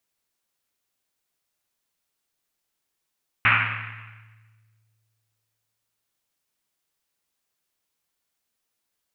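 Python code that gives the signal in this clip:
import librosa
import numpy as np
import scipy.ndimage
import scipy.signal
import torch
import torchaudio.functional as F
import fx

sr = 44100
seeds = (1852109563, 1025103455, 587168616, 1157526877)

y = fx.risset_drum(sr, seeds[0], length_s=3.76, hz=110.0, decay_s=2.3, noise_hz=1900.0, noise_width_hz=1500.0, noise_pct=75)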